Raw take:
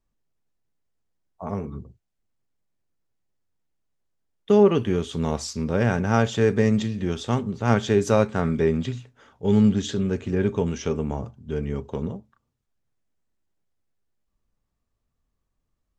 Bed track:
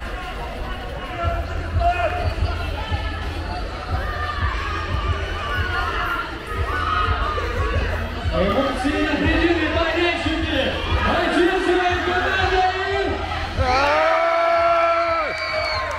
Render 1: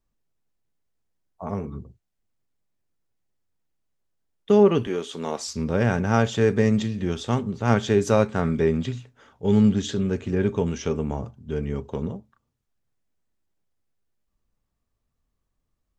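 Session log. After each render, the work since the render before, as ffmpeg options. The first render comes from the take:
-filter_complex "[0:a]asettb=1/sr,asplit=3[a][b][c];[a]atrim=end=4.874[d];[b]atrim=start=4.87:end=5.48,asetpts=PTS-STARTPTS,afade=t=in:d=0.004:c=qsin,afade=t=out:st=0.606:d=0.004:c=qsin,highpass=320[e];[c]atrim=start=5.476[f];[d][e]acrossfade=d=0.004:c1=hsin:c2=qsin[g];[g][f]acrossfade=d=0.004:c1=qsin:c2=hsin"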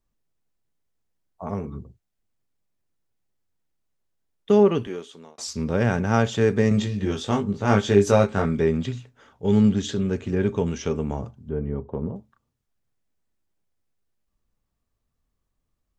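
-filter_complex "[0:a]asettb=1/sr,asplit=3[a][b][c];[a]atrim=end=6.694[d];[b]atrim=start=6.69:end=8.46,asetpts=PTS-STARTPTS,afade=t=in:d=0.004:c=qsin,afade=t=out:st=1.766:d=0.004:c=qsin,asplit=2[e][f];[f]adelay=20,volume=-3.5dB[g];[e][g]amix=inputs=2:normalize=0,atrim=end_sample=78057[h];[c]atrim=start=8.456[i];[d][h]acrossfade=d=0.004:c1=hsin:c2=qsin[j];[j][i]acrossfade=d=0.004:c1=qsin:c2=hsin,asettb=1/sr,asplit=3[k][l][m];[k]atrim=end=11.494[n];[l]atrim=start=11.49:end=12.16,asetpts=PTS-STARTPTS,afade=t=in:d=0.004:c=qsin,afade=t=out:st=0.666:d=0.004:c=qsin,lowpass=1.1k[o];[m]atrim=start=12.156[p];[n][o]acrossfade=d=0.004:c1=hsin:c2=qsin[q];[q][p]acrossfade=d=0.004:c1=qsin:c2=hsin,asplit=2[r][s];[r]atrim=end=5.38,asetpts=PTS-STARTPTS,afade=t=out:st=4.58:d=0.8[t];[s]atrim=start=5.38,asetpts=PTS-STARTPTS,afade=t=in:d=0.004:c=hsin[u];[t][u]concat=n=2:v=0:a=1"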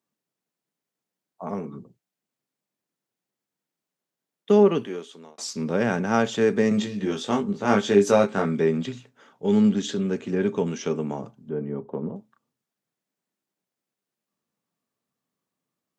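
-af "highpass=f=160:w=0.5412,highpass=f=160:w=1.3066"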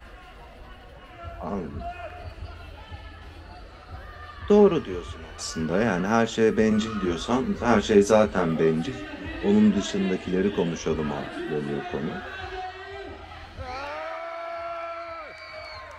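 -filter_complex "[1:a]volume=-16.5dB[a];[0:a][a]amix=inputs=2:normalize=0"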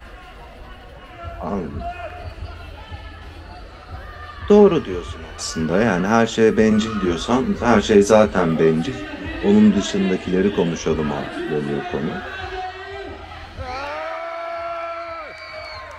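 -af "volume=6dB,alimiter=limit=-2dB:level=0:latency=1"

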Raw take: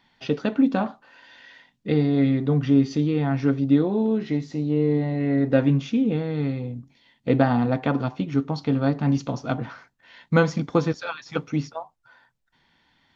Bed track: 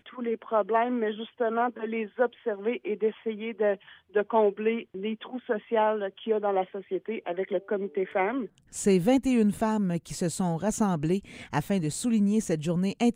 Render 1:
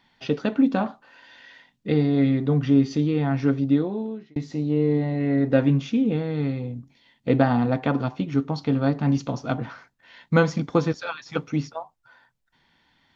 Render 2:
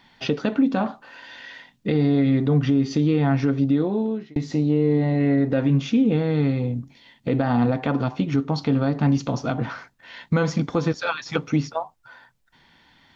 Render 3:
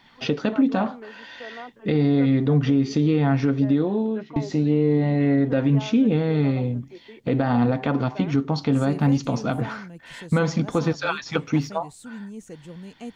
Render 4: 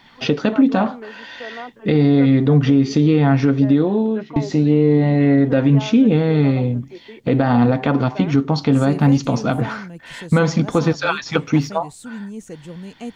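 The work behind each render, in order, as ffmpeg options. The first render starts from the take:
-filter_complex "[0:a]asplit=2[a][b];[a]atrim=end=4.36,asetpts=PTS-STARTPTS,afade=t=out:st=3.6:d=0.76[c];[b]atrim=start=4.36,asetpts=PTS-STARTPTS,afade=t=in:d=0.004:c=hsin[d];[c][d]concat=n=2:v=0:a=1"
-filter_complex "[0:a]asplit=2[a][b];[b]acompressor=threshold=-28dB:ratio=6,volume=3dB[c];[a][c]amix=inputs=2:normalize=0,alimiter=limit=-11dB:level=0:latency=1:release=72"
-filter_complex "[1:a]volume=-13dB[a];[0:a][a]amix=inputs=2:normalize=0"
-af "volume=5.5dB"

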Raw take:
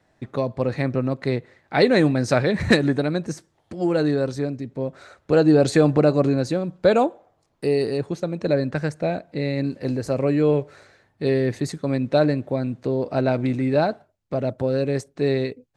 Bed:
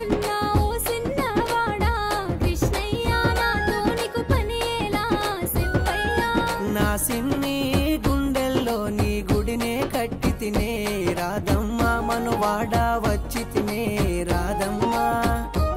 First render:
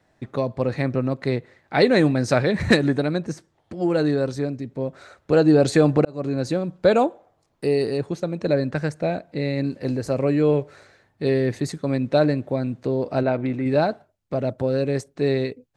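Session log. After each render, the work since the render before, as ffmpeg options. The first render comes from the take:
-filter_complex "[0:a]asettb=1/sr,asplit=3[a][b][c];[a]atrim=end=3.184[d];[b]atrim=start=3.18:end=3.9,asetpts=PTS-STARTPTS,afade=t=in:d=0.004:c=qsin,afade=t=out:st=0.716:d=0.004:c=qsin,highshelf=f=6k:g=-7[e];[c]atrim=start=3.896[f];[d][e]acrossfade=d=0.004:c1=hsin:c2=qsin[g];[g][f]acrossfade=d=0.004:c1=qsin:c2=hsin,asettb=1/sr,asplit=3[h][i][j];[h]atrim=end=13.234[k];[i]atrim=start=13.23:end=13.66,asetpts=PTS-STARTPTS,afade=t=in:d=0.004:c=qsin,afade=t=out:st=0.426:d=0.004:c=qsin,bass=f=250:g=-4,treble=f=4k:g=-14[l];[j]atrim=start=13.656[m];[k][l]acrossfade=d=0.004:c1=hsin:c2=qsin[n];[n][m]acrossfade=d=0.004:c1=qsin:c2=hsin,asplit=2[o][p];[o]atrim=end=6.05,asetpts=PTS-STARTPTS,afade=t=out:st=6.046:d=0.004:c=hsin[q];[p]atrim=start=6.05,asetpts=PTS-STARTPTS,afade=t=in:d=0.45[r];[q][r]concat=n=2:v=0:a=1"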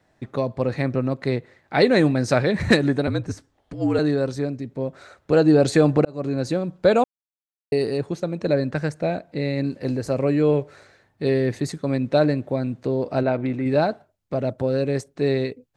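-filter_complex "[0:a]asettb=1/sr,asplit=3[a][b][c];[a]atrim=end=3.074[d];[b]atrim=start=3.07:end=3.99,asetpts=PTS-STARTPTS,afade=t=in:d=0.004:c=qsin,afade=t=out:st=0.916:d=0.004:c=qsin,afreqshift=-52[e];[c]atrim=start=3.986[f];[d][e]acrossfade=d=0.004:c1=hsin:c2=qsin[g];[g][f]acrossfade=d=0.004:c1=qsin:c2=hsin,asplit=3[h][i][j];[h]atrim=end=7.04,asetpts=PTS-STARTPTS,afade=t=out:st=7.036:d=0.004:c=hsin[k];[i]atrim=start=7.04:end=7.72,asetpts=PTS-STARTPTS,volume=0[l];[j]atrim=start=7.72,asetpts=PTS-STARTPTS,afade=t=in:d=0.004:c=hsin[m];[k][l][m]concat=n=3:v=0:a=1"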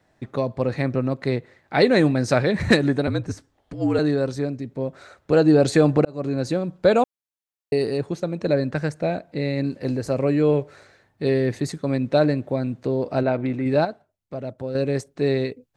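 -filter_complex "[0:a]asplit=3[a][b][c];[a]atrim=end=13.852[d];[b]atrim=start=13.848:end=14.752,asetpts=PTS-STARTPTS,volume=-7dB[e];[c]atrim=start=14.748[f];[d][e]acrossfade=d=0.004:c1=hsin:c2=hsin[g];[g][f]acrossfade=d=0.004:c1=hsin:c2=hsin"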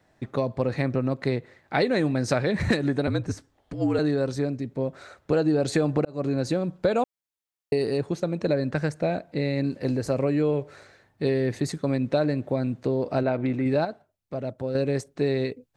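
-af "acompressor=threshold=-20dB:ratio=4"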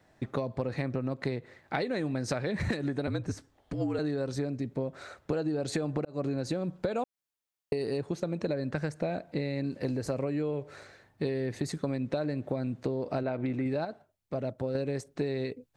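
-af "acompressor=threshold=-28dB:ratio=6"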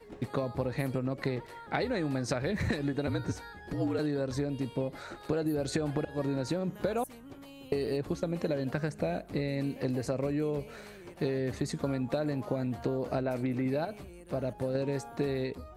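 -filter_complex "[1:a]volume=-25dB[a];[0:a][a]amix=inputs=2:normalize=0"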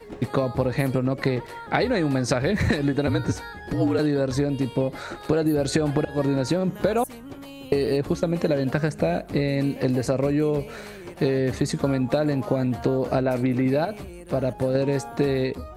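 -af "volume=9dB"

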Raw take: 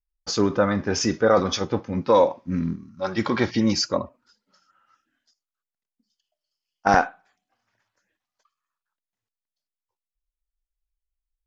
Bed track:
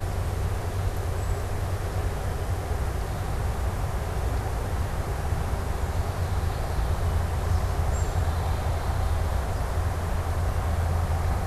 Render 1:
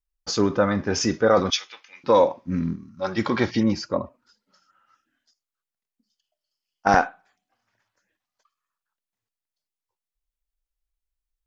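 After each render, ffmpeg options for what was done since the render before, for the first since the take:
-filter_complex "[0:a]asettb=1/sr,asplit=3[a][b][c];[a]atrim=end=1.504[d];[b]atrim=start=1.5:end=2.04,asetpts=PTS-STARTPTS,afade=t=in:d=0.004:c=qsin,afade=t=out:st=0.536:d=0.004:c=qsin,highpass=f=2.5k:t=q:w=2.2[e];[c]atrim=start=2.036[f];[d][e]acrossfade=d=0.004:c1=hsin:c2=qsin[g];[g][f]acrossfade=d=0.004:c1=qsin:c2=hsin,asettb=1/sr,asplit=3[h][i][j];[h]atrim=end=3.634[k];[i]atrim=start=3.63:end=4.04,asetpts=PTS-STARTPTS,afade=t=in:d=0.004:c=qsin,afade=t=out:st=0.406:d=0.004:c=qsin,lowpass=f=1.5k:p=1[l];[j]atrim=start=4.036[m];[k][l]acrossfade=d=0.004:c1=hsin:c2=qsin[n];[n][m]acrossfade=d=0.004:c1=qsin:c2=hsin"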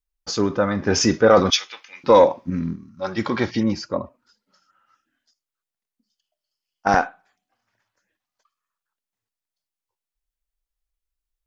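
-filter_complex "[0:a]asettb=1/sr,asplit=3[a][b][c];[a]atrim=end=0.824[d];[b]atrim=start=0.82:end=2.5,asetpts=PTS-STARTPTS,afade=t=in:d=0.004:c=qsin,afade=t=out:st=1.676:d=0.004:c=qsin,acontrast=28[e];[c]atrim=start=2.496[f];[d][e]acrossfade=d=0.004:c1=hsin:c2=qsin[g];[g][f]acrossfade=d=0.004:c1=qsin:c2=hsin"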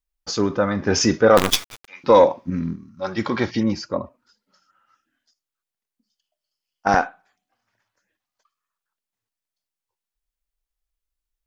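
-filter_complex "[0:a]asettb=1/sr,asplit=3[a][b][c];[a]atrim=end=1.374[d];[b]atrim=start=1.37:end=1.88,asetpts=PTS-STARTPTS,afade=t=in:d=0.004:c=qsin,afade=t=out:st=0.506:d=0.004:c=qsin,acrusher=bits=3:dc=4:mix=0:aa=0.000001[e];[c]atrim=start=1.876[f];[d][e]acrossfade=d=0.004:c1=hsin:c2=qsin[g];[g][f]acrossfade=d=0.004:c1=qsin:c2=hsin"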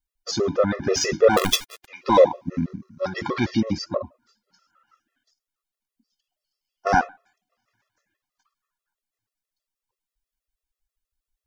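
-filter_complex "[0:a]asplit=2[a][b];[b]asoftclip=type=tanh:threshold=-17.5dB,volume=-8.5dB[c];[a][c]amix=inputs=2:normalize=0,afftfilt=real='re*gt(sin(2*PI*6.2*pts/sr)*(1-2*mod(floor(b*sr/1024/350),2)),0)':imag='im*gt(sin(2*PI*6.2*pts/sr)*(1-2*mod(floor(b*sr/1024/350),2)),0)':win_size=1024:overlap=0.75"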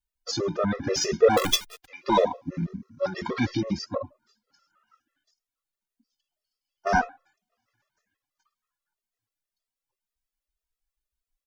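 -filter_complex "[0:a]asplit=2[a][b];[b]adelay=2.9,afreqshift=1.9[c];[a][c]amix=inputs=2:normalize=1"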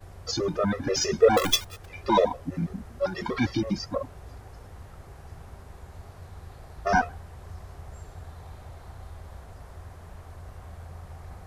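-filter_complex "[1:a]volume=-17dB[a];[0:a][a]amix=inputs=2:normalize=0"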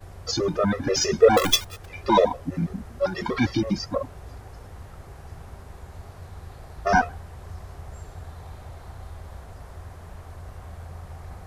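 -af "volume=3dB"

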